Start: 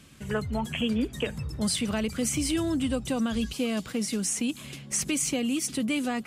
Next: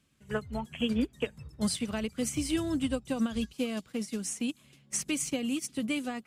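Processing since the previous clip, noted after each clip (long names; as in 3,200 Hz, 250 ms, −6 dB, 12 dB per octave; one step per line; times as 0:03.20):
expander for the loud parts 2.5 to 1, over −36 dBFS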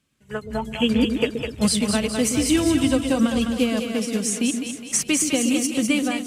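low-shelf EQ 170 Hz −3.5 dB
automatic gain control gain up to 10.5 dB
echo with a time of its own for lows and highs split 460 Hz, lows 125 ms, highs 206 ms, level −5.5 dB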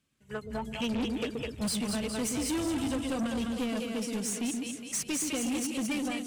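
soft clipping −21.5 dBFS, distortion −10 dB
level −6 dB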